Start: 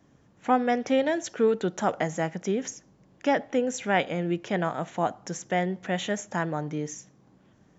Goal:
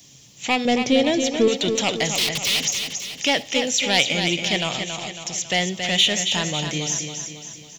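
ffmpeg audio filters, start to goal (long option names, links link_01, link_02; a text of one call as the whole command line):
ffmpeg -i in.wav -filter_complex "[0:a]aeval=exprs='0.335*sin(PI/2*1.78*val(0)/0.335)':channel_layout=same,asettb=1/sr,asplit=3[link_01][link_02][link_03];[link_01]atrim=end=0.654[link_04];[link_02]atrim=start=0.65:end=1.48,asetpts=PTS-STARTPTS,afade=type=in:duration=0.004:curve=qsin,afade=type=out:start_time=0.826:duration=0.004:curve=qsin,tiltshelf=frequency=890:gain=8.5[link_05];[link_03]atrim=start=1.476[link_06];[link_04][link_05]acrossfade=duration=0.004:curve1=hsin:curve2=qsin[link_07];[link_07][link_06]acrossfade=duration=0.004:curve1=qsin:curve2=hsin,asplit=3[link_08][link_09][link_10];[link_08]afade=type=out:start_time=2.14:duration=0.02[link_11];[link_09]aeval=exprs='(mod(12.6*val(0)+1,2)-1)/12.6':channel_layout=same,afade=type=in:start_time=2.14:duration=0.02,afade=type=out:start_time=2.59:duration=0.02[link_12];[link_10]afade=type=in:start_time=2.59:duration=0.02[link_13];[link_11][link_12][link_13]amix=inputs=3:normalize=0,asettb=1/sr,asplit=3[link_14][link_15][link_16];[link_14]atrim=end=4.774[link_17];[link_15]atrim=start=4.77:end=5.38,asetpts=PTS-STARTPTS,afade=type=in:duration=0.004:curve=qsin,afade=type=out:start_time=0.606:duration=0.004:curve=qsin,acompressor=threshold=-36dB:ratio=2[link_18];[link_16]atrim=start=5.376[link_19];[link_17][link_18]acrossfade=duration=0.004:curve1=hsin:curve2=qsin[link_20];[link_20][link_19]acrossfade=duration=0.004:curve1=qsin:curve2=hsin,equalizer=frequency=130:width=4.6:gain=9.5,acrossover=split=4000[link_21][link_22];[link_22]acompressor=threshold=-50dB:ratio=4:attack=1:release=60[link_23];[link_21][link_23]amix=inputs=2:normalize=0,aecho=1:1:275|550|825|1100|1375|1650:0.447|0.219|0.107|0.0526|0.0258|0.0126,aexciter=amount=8.8:drive=9.1:freq=2400,volume=-7.5dB" out.wav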